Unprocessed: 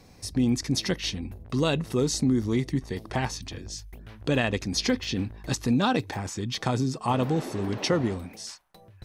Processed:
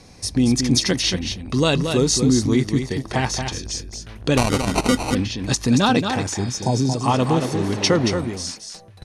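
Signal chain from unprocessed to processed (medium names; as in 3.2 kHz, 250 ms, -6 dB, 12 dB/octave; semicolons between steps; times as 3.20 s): 6.42–6.78 s: spectral replace 1–5.1 kHz; delay 228 ms -6.5 dB; 4.37–5.15 s: sample-rate reducer 1.7 kHz, jitter 0%; low-pass 9.9 kHz 24 dB/octave; treble shelf 5 kHz +7.5 dB; band-stop 7.7 kHz, Q 11; trim +6 dB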